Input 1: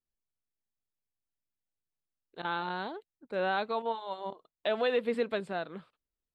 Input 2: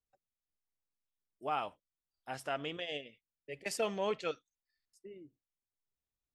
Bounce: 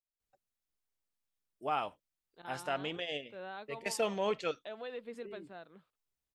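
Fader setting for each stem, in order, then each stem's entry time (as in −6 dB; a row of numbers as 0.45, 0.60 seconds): −14.5, +1.5 decibels; 0.00, 0.20 seconds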